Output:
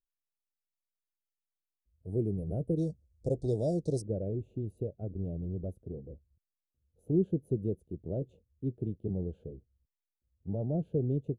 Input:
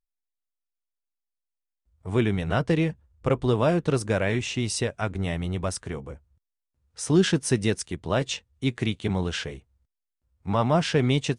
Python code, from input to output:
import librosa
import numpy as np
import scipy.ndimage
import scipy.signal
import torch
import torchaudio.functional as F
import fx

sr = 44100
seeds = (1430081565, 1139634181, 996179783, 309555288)

y = fx.cheby2_bandstop(x, sr, low_hz=1000.0, high_hz=fx.steps((0.0, 6800.0), (2.77, 3000.0), (4.0, 9100.0)), order=4, stop_db=40)
y = fx.dynamic_eq(y, sr, hz=240.0, q=5.8, threshold_db=-41.0, ratio=4.0, max_db=-6)
y = y * librosa.db_to_amplitude(-7.0)